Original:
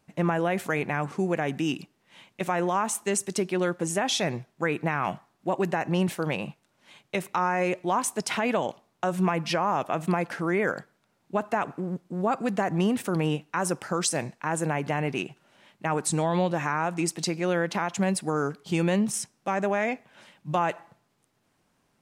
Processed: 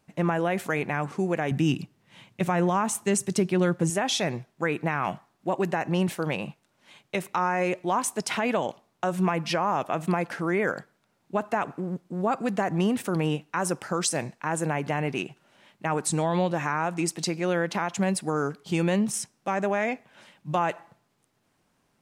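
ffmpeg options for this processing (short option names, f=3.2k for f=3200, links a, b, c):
-filter_complex "[0:a]asettb=1/sr,asplit=3[a][b][c];[a]atrim=end=1.514[d];[b]atrim=start=1.51:end=3.9,asetpts=PTS-STARTPTS,afade=t=in:d=0.004:c=qsin,afade=t=out:st=2.386:d=0.004:c=qsin,equalizer=f=120:w=1:g=12.5[e];[c]atrim=start=3.896[f];[d][e]acrossfade=d=0.004:c1=hsin:c2=qsin[g];[g][f]acrossfade=d=0.004:c1=qsin:c2=hsin"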